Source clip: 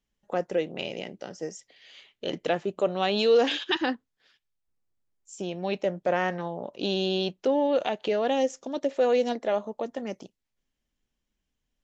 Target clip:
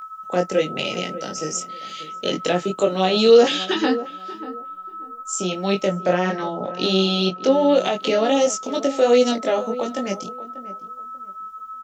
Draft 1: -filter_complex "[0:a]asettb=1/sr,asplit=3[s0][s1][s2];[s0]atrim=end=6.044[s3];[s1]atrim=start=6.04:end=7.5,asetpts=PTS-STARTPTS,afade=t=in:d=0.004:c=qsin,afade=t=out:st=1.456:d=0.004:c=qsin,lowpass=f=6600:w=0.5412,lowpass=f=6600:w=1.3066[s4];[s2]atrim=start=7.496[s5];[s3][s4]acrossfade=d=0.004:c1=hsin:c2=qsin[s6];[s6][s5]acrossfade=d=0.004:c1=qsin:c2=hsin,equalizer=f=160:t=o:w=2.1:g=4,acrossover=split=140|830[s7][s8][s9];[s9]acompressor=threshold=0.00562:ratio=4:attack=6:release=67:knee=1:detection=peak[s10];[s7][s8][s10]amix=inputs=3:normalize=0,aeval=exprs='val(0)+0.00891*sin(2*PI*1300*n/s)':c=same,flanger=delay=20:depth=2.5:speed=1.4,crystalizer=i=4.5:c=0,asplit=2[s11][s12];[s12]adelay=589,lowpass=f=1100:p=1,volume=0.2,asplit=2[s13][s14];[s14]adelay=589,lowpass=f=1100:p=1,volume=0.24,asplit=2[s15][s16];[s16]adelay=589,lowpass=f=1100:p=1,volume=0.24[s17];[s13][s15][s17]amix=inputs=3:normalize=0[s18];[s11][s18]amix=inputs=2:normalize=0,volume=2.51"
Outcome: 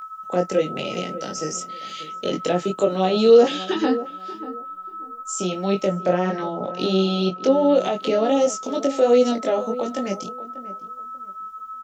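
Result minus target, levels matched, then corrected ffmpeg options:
compression: peak gain reduction +6.5 dB
-filter_complex "[0:a]asettb=1/sr,asplit=3[s0][s1][s2];[s0]atrim=end=6.044[s3];[s1]atrim=start=6.04:end=7.5,asetpts=PTS-STARTPTS,afade=t=in:d=0.004:c=qsin,afade=t=out:st=1.456:d=0.004:c=qsin,lowpass=f=6600:w=0.5412,lowpass=f=6600:w=1.3066[s4];[s2]atrim=start=7.496[s5];[s3][s4]acrossfade=d=0.004:c1=hsin:c2=qsin[s6];[s6][s5]acrossfade=d=0.004:c1=qsin:c2=hsin,equalizer=f=160:t=o:w=2.1:g=4,acrossover=split=140|830[s7][s8][s9];[s9]acompressor=threshold=0.0158:ratio=4:attack=6:release=67:knee=1:detection=peak[s10];[s7][s8][s10]amix=inputs=3:normalize=0,aeval=exprs='val(0)+0.00891*sin(2*PI*1300*n/s)':c=same,flanger=delay=20:depth=2.5:speed=1.4,crystalizer=i=4.5:c=0,asplit=2[s11][s12];[s12]adelay=589,lowpass=f=1100:p=1,volume=0.2,asplit=2[s13][s14];[s14]adelay=589,lowpass=f=1100:p=1,volume=0.24,asplit=2[s15][s16];[s16]adelay=589,lowpass=f=1100:p=1,volume=0.24[s17];[s13][s15][s17]amix=inputs=3:normalize=0[s18];[s11][s18]amix=inputs=2:normalize=0,volume=2.51"

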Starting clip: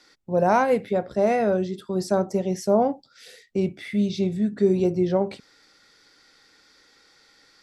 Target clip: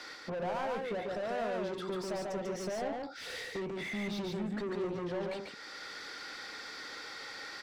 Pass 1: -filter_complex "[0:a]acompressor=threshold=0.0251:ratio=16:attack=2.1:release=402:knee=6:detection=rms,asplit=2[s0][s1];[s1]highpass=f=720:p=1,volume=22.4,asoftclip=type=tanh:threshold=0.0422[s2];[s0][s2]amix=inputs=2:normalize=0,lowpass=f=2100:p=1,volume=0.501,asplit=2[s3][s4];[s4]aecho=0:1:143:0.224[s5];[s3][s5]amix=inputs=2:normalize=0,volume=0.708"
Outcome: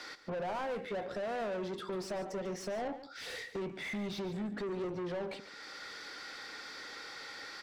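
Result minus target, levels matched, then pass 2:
echo-to-direct -10.5 dB
-filter_complex "[0:a]acompressor=threshold=0.0251:ratio=16:attack=2.1:release=402:knee=6:detection=rms,asplit=2[s0][s1];[s1]highpass=f=720:p=1,volume=22.4,asoftclip=type=tanh:threshold=0.0422[s2];[s0][s2]amix=inputs=2:normalize=0,lowpass=f=2100:p=1,volume=0.501,asplit=2[s3][s4];[s4]aecho=0:1:143:0.75[s5];[s3][s5]amix=inputs=2:normalize=0,volume=0.708"

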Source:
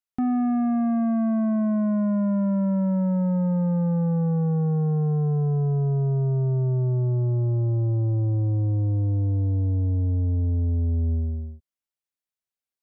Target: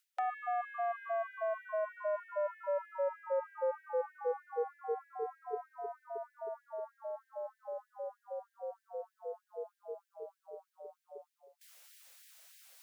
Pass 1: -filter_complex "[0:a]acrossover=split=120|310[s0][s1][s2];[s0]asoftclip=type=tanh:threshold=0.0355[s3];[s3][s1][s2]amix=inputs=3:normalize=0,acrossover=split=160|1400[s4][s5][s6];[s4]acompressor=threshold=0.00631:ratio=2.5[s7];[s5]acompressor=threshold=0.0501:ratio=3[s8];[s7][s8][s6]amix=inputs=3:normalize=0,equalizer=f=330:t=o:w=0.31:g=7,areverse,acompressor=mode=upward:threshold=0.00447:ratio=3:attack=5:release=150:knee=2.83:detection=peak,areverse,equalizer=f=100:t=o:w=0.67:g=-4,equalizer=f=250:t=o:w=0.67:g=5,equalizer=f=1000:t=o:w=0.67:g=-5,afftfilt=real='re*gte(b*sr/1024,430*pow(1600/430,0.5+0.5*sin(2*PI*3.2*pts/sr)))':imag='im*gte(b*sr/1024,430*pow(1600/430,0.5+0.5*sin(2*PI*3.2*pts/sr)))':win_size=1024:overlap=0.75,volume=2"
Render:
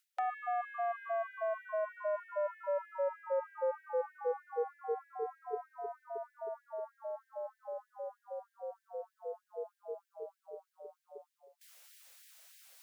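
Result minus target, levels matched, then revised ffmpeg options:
saturation: distortion +8 dB
-filter_complex "[0:a]acrossover=split=120|310[s0][s1][s2];[s0]asoftclip=type=tanh:threshold=0.075[s3];[s3][s1][s2]amix=inputs=3:normalize=0,acrossover=split=160|1400[s4][s5][s6];[s4]acompressor=threshold=0.00631:ratio=2.5[s7];[s5]acompressor=threshold=0.0501:ratio=3[s8];[s7][s8][s6]amix=inputs=3:normalize=0,equalizer=f=330:t=o:w=0.31:g=7,areverse,acompressor=mode=upward:threshold=0.00447:ratio=3:attack=5:release=150:knee=2.83:detection=peak,areverse,equalizer=f=100:t=o:w=0.67:g=-4,equalizer=f=250:t=o:w=0.67:g=5,equalizer=f=1000:t=o:w=0.67:g=-5,afftfilt=real='re*gte(b*sr/1024,430*pow(1600/430,0.5+0.5*sin(2*PI*3.2*pts/sr)))':imag='im*gte(b*sr/1024,430*pow(1600/430,0.5+0.5*sin(2*PI*3.2*pts/sr)))':win_size=1024:overlap=0.75,volume=2"

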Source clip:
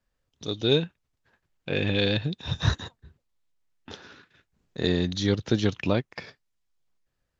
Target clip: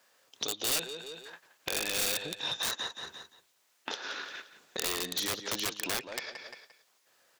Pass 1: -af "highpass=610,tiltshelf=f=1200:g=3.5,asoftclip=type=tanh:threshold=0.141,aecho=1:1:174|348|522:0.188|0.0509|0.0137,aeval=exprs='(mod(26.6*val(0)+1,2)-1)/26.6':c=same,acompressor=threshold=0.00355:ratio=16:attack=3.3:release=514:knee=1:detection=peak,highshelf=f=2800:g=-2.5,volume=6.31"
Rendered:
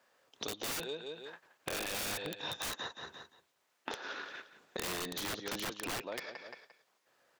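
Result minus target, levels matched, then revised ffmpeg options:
saturation: distortion -12 dB; 2 kHz band +2.5 dB
-af "highpass=610,tiltshelf=f=1200:g=3.5,asoftclip=type=tanh:threshold=0.0422,aecho=1:1:174|348|522:0.188|0.0509|0.0137,aeval=exprs='(mod(26.6*val(0)+1,2)-1)/26.6':c=same,acompressor=threshold=0.00355:ratio=16:attack=3.3:release=514:knee=1:detection=peak,highshelf=f=2800:g=8.5,volume=6.31"

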